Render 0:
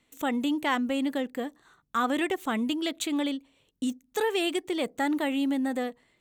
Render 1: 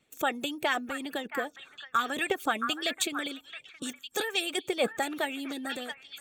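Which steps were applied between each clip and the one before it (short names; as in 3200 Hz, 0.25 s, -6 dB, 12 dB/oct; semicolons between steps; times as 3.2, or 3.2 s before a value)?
notch comb 1000 Hz; delay with a stepping band-pass 0.671 s, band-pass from 1500 Hz, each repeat 1.4 oct, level -5 dB; harmonic-percussive split harmonic -16 dB; gain +5.5 dB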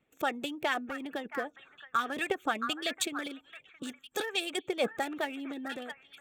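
Wiener smoothing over 9 samples; gain -2 dB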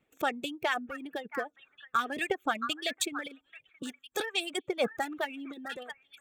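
reverb removal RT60 2 s; gain +1 dB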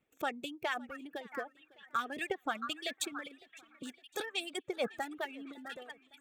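warbling echo 0.557 s, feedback 46%, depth 117 cents, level -23 dB; gain -5.5 dB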